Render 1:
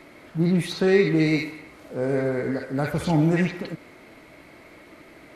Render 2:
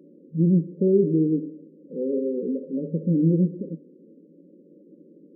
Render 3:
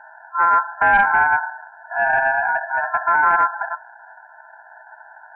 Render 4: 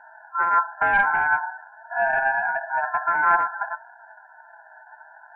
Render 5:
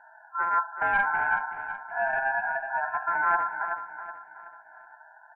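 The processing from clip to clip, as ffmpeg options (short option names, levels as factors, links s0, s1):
-af "afftfilt=real='re*between(b*sr/4096,160,580)':imag='im*between(b*sr/4096,160,580)':win_size=4096:overlap=0.75,lowshelf=f=290:g=10,volume=0.596"
-af "equalizer=f=550:t=o:w=1.1:g=7,asoftclip=type=tanh:threshold=0.188,aeval=exprs='val(0)*sin(2*PI*1200*n/s)':c=same,volume=2.37"
-af "flanger=delay=4.1:depth=2.8:regen=49:speed=0.51:shape=triangular"
-af "aecho=1:1:375|750|1125|1500:0.316|0.133|0.0558|0.0234,volume=0.531"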